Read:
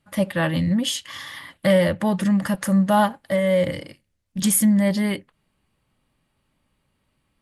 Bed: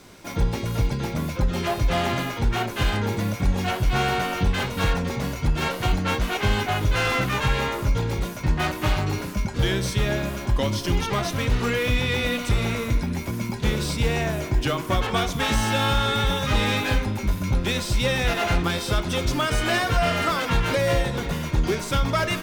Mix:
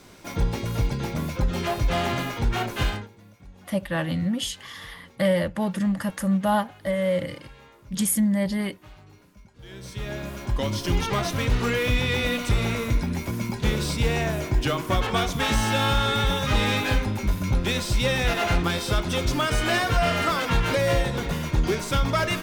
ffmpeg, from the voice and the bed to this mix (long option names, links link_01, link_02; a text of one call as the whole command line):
ffmpeg -i stem1.wav -i stem2.wav -filter_complex "[0:a]adelay=3550,volume=-4.5dB[link_01];[1:a]volume=23.5dB,afade=type=out:start_time=2.84:duration=0.24:silence=0.0630957,afade=type=in:start_time=9.62:duration=1.36:silence=0.0562341[link_02];[link_01][link_02]amix=inputs=2:normalize=0" out.wav